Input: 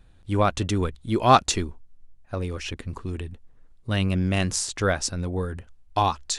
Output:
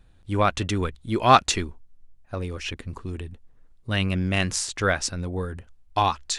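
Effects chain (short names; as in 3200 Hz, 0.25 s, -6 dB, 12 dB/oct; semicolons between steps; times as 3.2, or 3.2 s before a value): dynamic EQ 2100 Hz, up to +6 dB, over -38 dBFS, Q 0.74; gain -1.5 dB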